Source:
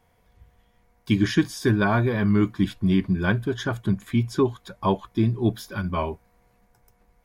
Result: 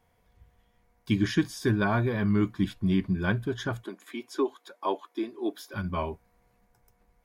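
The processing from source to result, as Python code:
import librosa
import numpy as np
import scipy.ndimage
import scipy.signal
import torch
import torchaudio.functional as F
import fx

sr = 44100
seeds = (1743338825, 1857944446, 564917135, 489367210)

y = fx.cheby1_highpass(x, sr, hz=290.0, order=4, at=(3.84, 5.74))
y = y * librosa.db_to_amplitude(-4.5)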